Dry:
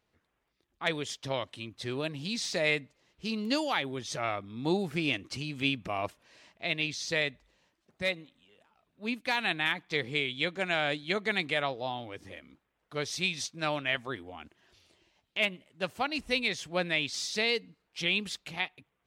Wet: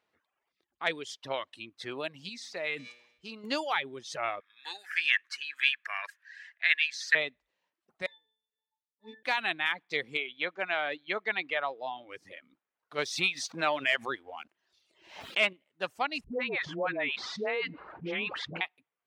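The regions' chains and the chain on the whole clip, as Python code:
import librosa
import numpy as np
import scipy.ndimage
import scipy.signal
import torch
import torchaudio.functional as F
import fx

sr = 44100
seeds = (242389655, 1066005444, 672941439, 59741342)

y = fx.chain(x, sr, fx.comb_fb(f0_hz=120.0, decay_s=1.6, harmonics='all', damping=0.0, mix_pct=50),
    fx.sustainer(db_per_s=61.0), at=(2.29, 3.44))
y = fx.chain(y, sr, fx.highpass_res(hz=1700.0, q=10.0),
    fx.high_shelf(hz=7300.0, db=4.5), at=(4.4, 7.15))
y = fx.chain(y, sr, fx.leveller(passes=3),
    fx.tilt_eq(slope=3.5),
    fx.octave_resonator(note='A', decay_s=0.54), at=(8.06, 9.23))
y = fx.chain(y, sr, fx.lowpass(hz=3200.0, slope=12),
    fx.low_shelf(hz=140.0, db=-11.5), at=(10.17, 12.09))
y = fx.chain(y, sr, fx.leveller(passes=1),
    fx.pre_swell(db_per_s=92.0), at=(12.98, 15.53))
y = fx.chain(y, sr, fx.lowpass(hz=1500.0, slope=12),
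    fx.dispersion(late='highs', ms=99.0, hz=560.0),
    fx.env_flatten(amount_pct=70), at=(16.24, 18.61))
y = fx.dereverb_blind(y, sr, rt60_s=1.0)
y = fx.highpass(y, sr, hz=750.0, slope=6)
y = fx.high_shelf(y, sr, hz=4000.0, db=-11.5)
y = y * librosa.db_to_amplitude(4.0)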